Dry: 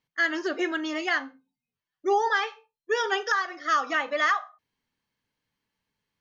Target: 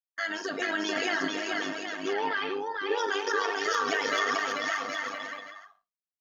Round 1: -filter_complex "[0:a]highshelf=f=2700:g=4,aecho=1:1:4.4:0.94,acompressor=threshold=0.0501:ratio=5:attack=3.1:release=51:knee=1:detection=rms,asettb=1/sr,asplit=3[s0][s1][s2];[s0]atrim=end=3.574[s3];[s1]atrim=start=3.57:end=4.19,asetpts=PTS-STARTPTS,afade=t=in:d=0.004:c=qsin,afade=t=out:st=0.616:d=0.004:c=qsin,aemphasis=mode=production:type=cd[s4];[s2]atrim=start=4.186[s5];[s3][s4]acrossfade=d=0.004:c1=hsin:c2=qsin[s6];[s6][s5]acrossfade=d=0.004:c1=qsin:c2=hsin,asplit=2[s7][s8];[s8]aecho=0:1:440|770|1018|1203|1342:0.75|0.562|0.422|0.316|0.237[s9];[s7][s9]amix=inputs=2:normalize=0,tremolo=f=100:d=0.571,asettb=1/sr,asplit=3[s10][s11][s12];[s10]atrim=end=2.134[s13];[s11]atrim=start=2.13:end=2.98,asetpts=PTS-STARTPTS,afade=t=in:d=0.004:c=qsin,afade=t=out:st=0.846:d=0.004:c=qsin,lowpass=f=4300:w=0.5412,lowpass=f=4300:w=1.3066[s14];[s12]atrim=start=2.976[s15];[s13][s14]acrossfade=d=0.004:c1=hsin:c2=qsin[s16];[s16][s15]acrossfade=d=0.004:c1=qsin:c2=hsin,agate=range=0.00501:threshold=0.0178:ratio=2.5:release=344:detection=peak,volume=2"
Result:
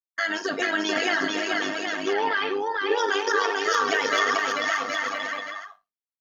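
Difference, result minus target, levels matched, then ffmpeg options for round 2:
compression: peak gain reduction -5 dB
-filter_complex "[0:a]highshelf=f=2700:g=4,aecho=1:1:4.4:0.94,acompressor=threshold=0.0237:ratio=5:attack=3.1:release=51:knee=1:detection=rms,asettb=1/sr,asplit=3[s0][s1][s2];[s0]atrim=end=3.574[s3];[s1]atrim=start=3.57:end=4.19,asetpts=PTS-STARTPTS,afade=t=in:d=0.004:c=qsin,afade=t=out:st=0.616:d=0.004:c=qsin,aemphasis=mode=production:type=cd[s4];[s2]atrim=start=4.186[s5];[s3][s4]acrossfade=d=0.004:c1=hsin:c2=qsin[s6];[s6][s5]acrossfade=d=0.004:c1=qsin:c2=hsin,asplit=2[s7][s8];[s8]aecho=0:1:440|770|1018|1203|1342:0.75|0.562|0.422|0.316|0.237[s9];[s7][s9]amix=inputs=2:normalize=0,tremolo=f=100:d=0.571,asettb=1/sr,asplit=3[s10][s11][s12];[s10]atrim=end=2.134[s13];[s11]atrim=start=2.13:end=2.98,asetpts=PTS-STARTPTS,afade=t=in:d=0.004:c=qsin,afade=t=out:st=0.846:d=0.004:c=qsin,lowpass=f=4300:w=0.5412,lowpass=f=4300:w=1.3066[s14];[s12]atrim=start=2.976[s15];[s13][s14]acrossfade=d=0.004:c1=hsin:c2=qsin[s16];[s16][s15]acrossfade=d=0.004:c1=qsin:c2=hsin,agate=range=0.00501:threshold=0.0178:ratio=2.5:release=344:detection=peak,volume=2"

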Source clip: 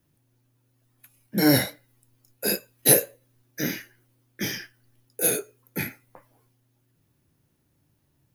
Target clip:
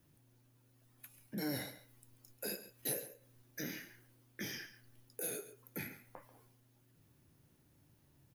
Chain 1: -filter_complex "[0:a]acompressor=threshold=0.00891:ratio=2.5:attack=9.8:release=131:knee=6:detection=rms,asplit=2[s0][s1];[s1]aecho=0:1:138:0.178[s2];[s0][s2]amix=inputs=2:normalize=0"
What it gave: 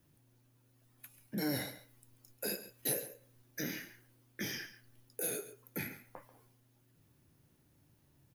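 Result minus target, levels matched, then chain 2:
compression: peak gain reduction -3.5 dB
-filter_complex "[0:a]acompressor=threshold=0.00447:ratio=2.5:attack=9.8:release=131:knee=6:detection=rms,asplit=2[s0][s1];[s1]aecho=0:1:138:0.178[s2];[s0][s2]amix=inputs=2:normalize=0"

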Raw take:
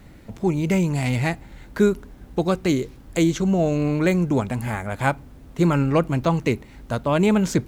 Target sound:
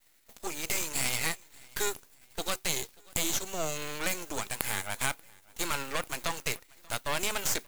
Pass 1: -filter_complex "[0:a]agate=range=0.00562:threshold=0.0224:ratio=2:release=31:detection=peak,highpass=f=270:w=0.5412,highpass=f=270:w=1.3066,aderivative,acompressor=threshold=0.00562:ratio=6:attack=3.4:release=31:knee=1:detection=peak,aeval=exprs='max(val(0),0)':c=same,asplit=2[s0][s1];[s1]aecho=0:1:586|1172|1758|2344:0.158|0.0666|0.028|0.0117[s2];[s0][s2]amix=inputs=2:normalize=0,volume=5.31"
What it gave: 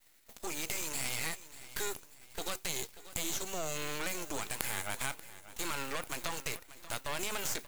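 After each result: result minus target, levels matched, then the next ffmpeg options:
compression: peak gain reduction +6.5 dB; echo-to-direct +9.5 dB
-filter_complex "[0:a]agate=range=0.00562:threshold=0.0224:ratio=2:release=31:detection=peak,highpass=f=270:w=0.5412,highpass=f=270:w=1.3066,aderivative,acompressor=threshold=0.0141:ratio=6:attack=3.4:release=31:knee=1:detection=peak,aeval=exprs='max(val(0),0)':c=same,asplit=2[s0][s1];[s1]aecho=0:1:586|1172|1758|2344:0.158|0.0666|0.028|0.0117[s2];[s0][s2]amix=inputs=2:normalize=0,volume=5.31"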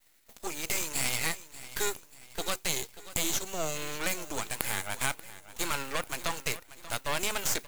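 echo-to-direct +9.5 dB
-filter_complex "[0:a]agate=range=0.00562:threshold=0.0224:ratio=2:release=31:detection=peak,highpass=f=270:w=0.5412,highpass=f=270:w=1.3066,aderivative,acompressor=threshold=0.0141:ratio=6:attack=3.4:release=31:knee=1:detection=peak,aeval=exprs='max(val(0),0)':c=same,asplit=2[s0][s1];[s1]aecho=0:1:586|1172:0.0531|0.0223[s2];[s0][s2]amix=inputs=2:normalize=0,volume=5.31"

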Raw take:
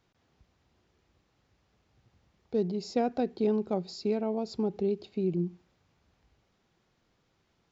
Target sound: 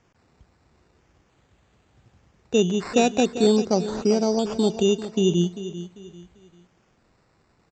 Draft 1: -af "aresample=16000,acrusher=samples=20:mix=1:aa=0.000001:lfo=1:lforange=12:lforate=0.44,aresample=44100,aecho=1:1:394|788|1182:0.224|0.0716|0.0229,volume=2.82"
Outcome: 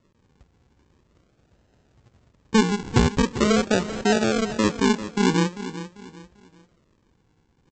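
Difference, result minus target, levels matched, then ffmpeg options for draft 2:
decimation with a swept rate: distortion +22 dB
-af "aresample=16000,acrusher=samples=4:mix=1:aa=0.000001:lfo=1:lforange=2.4:lforate=0.44,aresample=44100,aecho=1:1:394|788|1182:0.224|0.0716|0.0229,volume=2.82"

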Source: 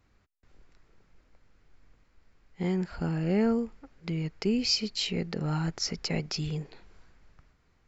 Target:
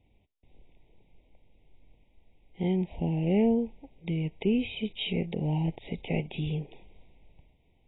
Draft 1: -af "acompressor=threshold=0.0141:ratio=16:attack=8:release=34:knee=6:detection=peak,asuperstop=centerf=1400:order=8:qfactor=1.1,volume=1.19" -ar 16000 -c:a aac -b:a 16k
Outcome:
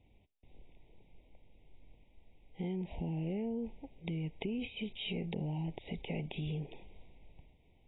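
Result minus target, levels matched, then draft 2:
compression: peak gain reduction +14.5 dB
-af "asuperstop=centerf=1400:order=8:qfactor=1.1,volume=1.19" -ar 16000 -c:a aac -b:a 16k

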